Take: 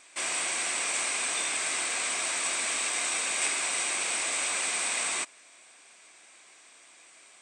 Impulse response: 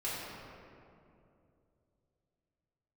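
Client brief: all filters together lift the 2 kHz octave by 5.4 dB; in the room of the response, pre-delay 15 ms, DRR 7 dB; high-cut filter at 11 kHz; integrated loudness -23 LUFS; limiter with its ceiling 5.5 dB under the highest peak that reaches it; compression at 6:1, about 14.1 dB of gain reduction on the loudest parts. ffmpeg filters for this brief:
-filter_complex "[0:a]lowpass=11000,equalizer=f=2000:t=o:g=6.5,acompressor=threshold=0.01:ratio=6,alimiter=level_in=2.99:limit=0.0631:level=0:latency=1,volume=0.335,asplit=2[s0][s1];[1:a]atrim=start_sample=2205,adelay=15[s2];[s1][s2]afir=irnorm=-1:irlink=0,volume=0.251[s3];[s0][s3]amix=inputs=2:normalize=0,volume=8.41"

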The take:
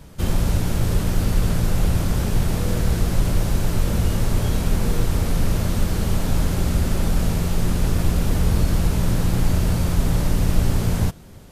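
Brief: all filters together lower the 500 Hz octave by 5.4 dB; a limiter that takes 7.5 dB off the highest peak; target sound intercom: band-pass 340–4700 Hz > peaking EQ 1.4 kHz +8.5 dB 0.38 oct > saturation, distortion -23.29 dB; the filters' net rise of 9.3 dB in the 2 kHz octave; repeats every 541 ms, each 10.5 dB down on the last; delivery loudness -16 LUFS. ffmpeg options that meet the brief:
-af "equalizer=f=500:t=o:g=-6,equalizer=f=2000:t=o:g=8.5,alimiter=limit=0.224:level=0:latency=1,highpass=340,lowpass=4700,equalizer=f=1400:t=o:w=0.38:g=8.5,aecho=1:1:541|1082|1623:0.299|0.0896|0.0269,asoftclip=threshold=0.0891,volume=5.62"

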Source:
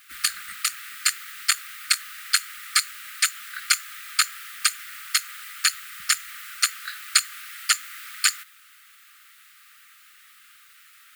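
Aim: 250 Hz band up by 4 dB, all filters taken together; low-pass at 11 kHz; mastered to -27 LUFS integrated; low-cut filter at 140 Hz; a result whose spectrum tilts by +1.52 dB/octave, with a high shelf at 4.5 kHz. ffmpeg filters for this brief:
-af "highpass=140,lowpass=11000,equalizer=f=250:t=o:g=6,highshelf=f=4500:g=3.5,volume=0.631"

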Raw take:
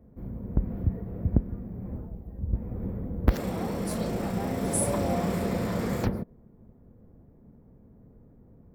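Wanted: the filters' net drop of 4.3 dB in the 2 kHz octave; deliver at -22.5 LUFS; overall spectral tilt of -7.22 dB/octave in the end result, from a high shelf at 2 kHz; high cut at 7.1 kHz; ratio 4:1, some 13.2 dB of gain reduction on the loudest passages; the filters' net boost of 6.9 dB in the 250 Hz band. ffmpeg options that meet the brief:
-af "lowpass=7100,equalizer=f=250:t=o:g=9,highshelf=f=2000:g=5,equalizer=f=2000:t=o:g=-8.5,acompressor=threshold=0.0398:ratio=4,volume=3.35"

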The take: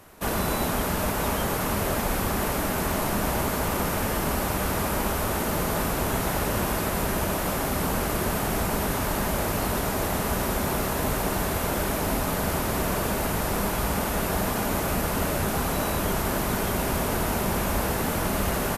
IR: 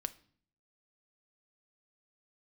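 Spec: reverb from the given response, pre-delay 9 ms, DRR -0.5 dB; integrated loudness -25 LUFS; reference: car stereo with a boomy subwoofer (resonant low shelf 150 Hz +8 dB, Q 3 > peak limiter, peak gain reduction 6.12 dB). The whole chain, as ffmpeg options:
-filter_complex "[0:a]asplit=2[s0][s1];[1:a]atrim=start_sample=2205,adelay=9[s2];[s1][s2]afir=irnorm=-1:irlink=0,volume=1.19[s3];[s0][s3]amix=inputs=2:normalize=0,lowshelf=f=150:t=q:w=3:g=8,volume=0.596,alimiter=limit=0.178:level=0:latency=1"

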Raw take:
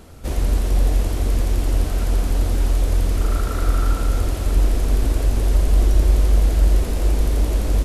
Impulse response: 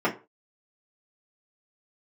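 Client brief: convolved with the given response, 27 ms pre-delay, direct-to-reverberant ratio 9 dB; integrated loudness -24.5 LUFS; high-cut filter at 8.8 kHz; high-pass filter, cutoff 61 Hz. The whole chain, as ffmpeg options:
-filter_complex "[0:a]highpass=61,lowpass=8800,asplit=2[s0][s1];[1:a]atrim=start_sample=2205,adelay=27[s2];[s1][s2]afir=irnorm=-1:irlink=0,volume=0.0708[s3];[s0][s3]amix=inputs=2:normalize=0"

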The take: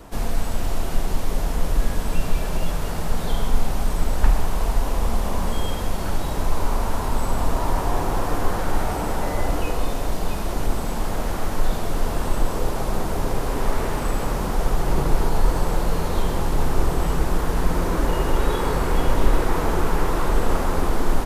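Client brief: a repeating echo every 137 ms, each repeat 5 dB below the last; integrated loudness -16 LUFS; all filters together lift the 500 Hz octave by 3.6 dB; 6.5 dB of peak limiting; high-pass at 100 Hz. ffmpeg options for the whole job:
-af "highpass=100,equalizer=f=500:t=o:g=4.5,alimiter=limit=0.141:level=0:latency=1,aecho=1:1:137|274|411|548|685|822|959:0.562|0.315|0.176|0.0988|0.0553|0.031|0.0173,volume=2.99"

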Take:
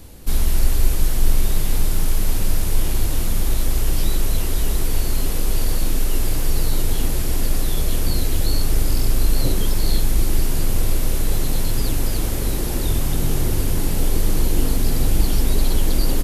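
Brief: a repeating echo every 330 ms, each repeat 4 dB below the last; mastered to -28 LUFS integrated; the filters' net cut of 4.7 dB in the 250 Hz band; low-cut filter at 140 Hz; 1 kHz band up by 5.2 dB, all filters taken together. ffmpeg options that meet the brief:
-af "highpass=140,equalizer=f=250:t=o:g=-6,equalizer=f=1000:t=o:g=7,aecho=1:1:330|660|990|1320|1650|1980|2310|2640|2970:0.631|0.398|0.25|0.158|0.0994|0.0626|0.0394|0.0249|0.0157,volume=0.708"

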